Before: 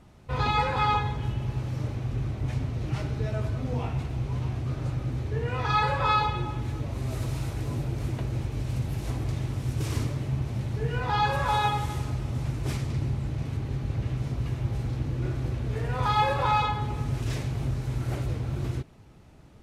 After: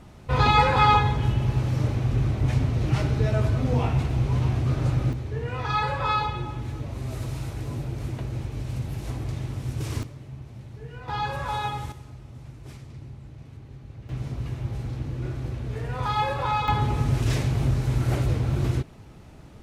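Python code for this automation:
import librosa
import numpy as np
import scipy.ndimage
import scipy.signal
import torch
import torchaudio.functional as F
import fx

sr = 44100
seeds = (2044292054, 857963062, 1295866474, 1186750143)

y = fx.gain(x, sr, db=fx.steps((0.0, 6.5), (5.13, -1.0), (10.03, -11.0), (11.08, -4.0), (11.92, -12.5), (14.09, -1.5), (16.68, 6.0)))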